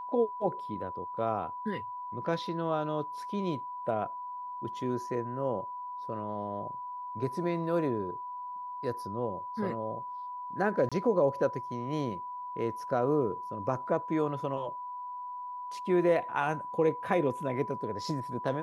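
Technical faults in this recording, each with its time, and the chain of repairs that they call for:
whistle 990 Hz −37 dBFS
0:10.89–0:10.92: drop-out 26 ms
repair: notch filter 990 Hz, Q 30
repair the gap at 0:10.89, 26 ms

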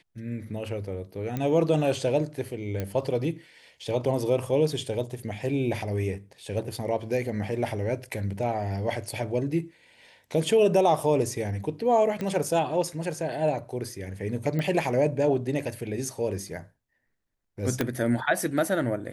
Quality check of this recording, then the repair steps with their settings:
0:01.37: click −17 dBFS
0:02.80: click −17 dBFS
0:12.21: click −19 dBFS
0:14.59: click −18 dBFS
0:17.81: click −10 dBFS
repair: click removal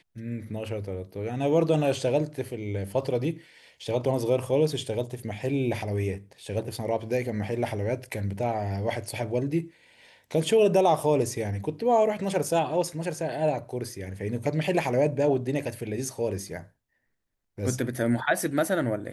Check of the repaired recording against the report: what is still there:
0:14.59: click
0:17.81: click

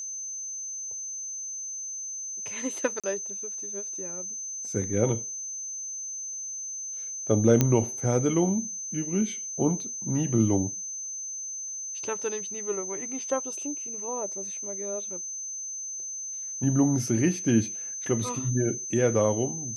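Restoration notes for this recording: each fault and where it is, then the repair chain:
whistle 6,200 Hz −33 dBFS
0:03.00–0:03.04: drop-out 36 ms
0:07.61: click −7 dBFS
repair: click removal
notch filter 6,200 Hz, Q 30
repair the gap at 0:03.00, 36 ms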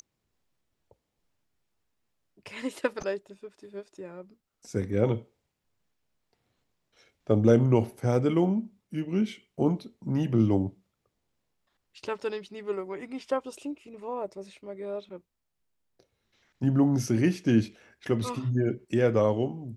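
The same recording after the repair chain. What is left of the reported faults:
none of them is left

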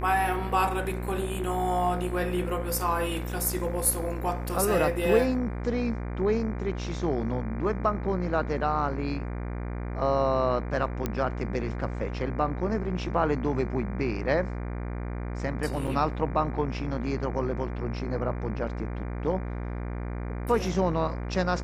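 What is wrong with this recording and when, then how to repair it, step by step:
mains buzz 60 Hz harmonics 40 −33 dBFS
0:11.06: click −14 dBFS
0:15.87–0:15.88: drop-out 6 ms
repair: click removal
hum removal 60 Hz, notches 40
repair the gap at 0:15.87, 6 ms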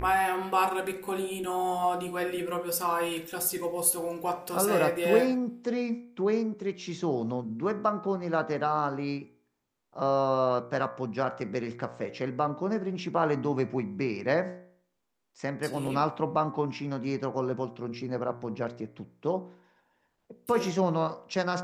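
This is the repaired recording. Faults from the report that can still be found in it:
none of them is left

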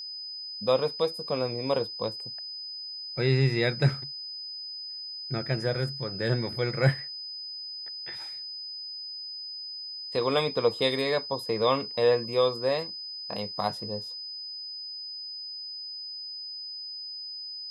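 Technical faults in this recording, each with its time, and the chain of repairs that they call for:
whistle 5,000 Hz −36 dBFS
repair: notch filter 5,000 Hz, Q 30

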